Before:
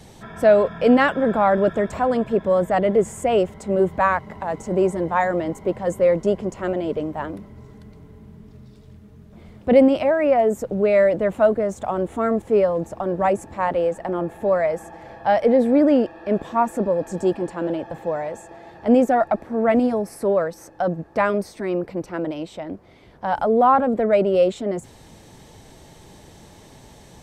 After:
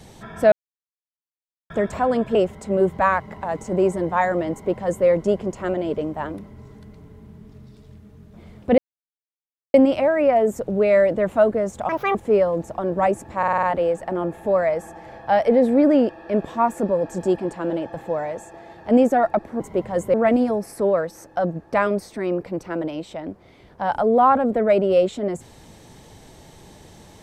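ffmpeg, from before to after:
-filter_complex "[0:a]asplit=14[a][b][c][d][e][f][g][h][i][j][k][l][m][n];[a]atrim=end=0.52,asetpts=PTS-STARTPTS,afade=t=out:st=0.516:d=0.004:c=hsin[o];[b]atrim=start=0.52:end=1.7,asetpts=PTS-STARTPTS,volume=0[p];[c]atrim=start=1.7:end=2.352,asetpts=PTS-STARTPTS,afade=t=in:d=0.004:c=hsin[q];[d]atrim=start=3.338:end=9.77,asetpts=PTS-STARTPTS,afade=t=out:st=6.428:d=0.004:c=hsin,apad=pad_dur=0.96[r];[e]atrim=start=9.77:end=11.924,asetpts=PTS-STARTPTS,afade=t=in:d=0.004:c=hsin[s];[f]atrim=start=11.92:end=12.37,asetpts=PTS-STARTPTS,asetrate=76734,aresample=44100,atrim=end_sample=11405,asetpts=PTS-STARTPTS[t];[g]atrim=start=12.366:end=13.652[u];[h]atrim=start=13.598:end=13.652[v];[i]atrim=start=13.598:end=13.652[w];[j]atrim=start=13.598:end=13.652[x];[k]atrim=start=13.598:end=13.652[y];[l]atrim=start=13.598:end=19.572[z];[m]atrim=start=5.508:end=6.052[aa];[n]atrim=start=19.568[ab];[o][p][q]concat=n=3:v=0:a=1[ac];[r][s]concat=n=2:v=0:a=1[ad];[ac][ad]acrossfade=d=0.004:c1=hsin:c2=hsin[ae];[ae][t]acrossfade=d=0.004:c1=hsin:c2=hsin[af];[af][u]acrossfade=d=0.004:c1=hsin:c2=hsin[ag];[ag][v]acrossfade=d=0.004:c1=hsin:c2=hsin[ah];[ah][w]acrossfade=d=0.004:c1=hsin:c2=hsin[ai];[ai][x]acrossfade=d=0.004:c1=hsin:c2=hsin[aj];[aj][y]acrossfade=d=0.004:c1=hsin:c2=hsin[ak];[ak][z]acrossfade=d=0.004:c1=hsin:c2=hsin[al];[al][aa]acrossfade=d=0.004:c1=hsin:c2=hsin[am];[am][ab]acrossfade=d=0.004:c1=hsin:c2=hsin"

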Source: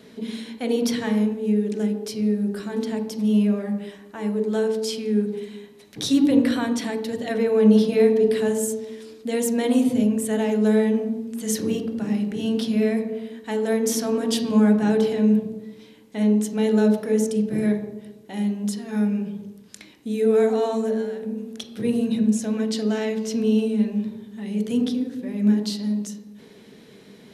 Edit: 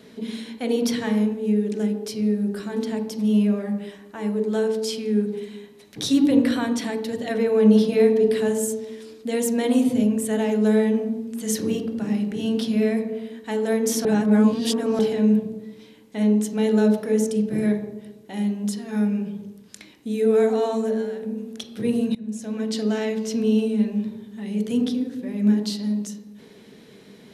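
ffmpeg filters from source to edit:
-filter_complex "[0:a]asplit=4[a][b][c][d];[a]atrim=end=14.052[e];[b]atrim=start=14.048:end=14.992,asetpts=PTS-STARTPTS,areverse[f];[c]atrim=start=14.988:end=22.15,asetpts=PTS-STARTPTS,afade=t=out:st=7.158:d=0.004:c=hsin:silence=0.0794328[g];[d]atrim=start=22.15,asetpts=PTS-STARTPTS,afade=t=in:d=0.65:silence=0.0794328[h];[e][f]acrossfade=d=0.004:c1=hsin:c2=hsin[i];[g][h]concat=n=2:v=0:a=1[j];[i][j]acrossfade=d=0.004:c1=hsin:c2=hsin"

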